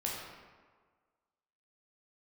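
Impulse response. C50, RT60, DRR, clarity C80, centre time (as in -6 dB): 0.0 dB, 1.5 s, -4.0 dB, 2.0 dB, 82 ms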